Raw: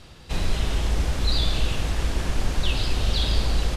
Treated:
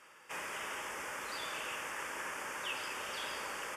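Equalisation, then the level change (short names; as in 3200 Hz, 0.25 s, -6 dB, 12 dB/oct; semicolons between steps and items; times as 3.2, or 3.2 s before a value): resonant high-pass 700 Hz, resonance Q 4.9; fixed phaser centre 1700 Hz, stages 4; -3.5 dB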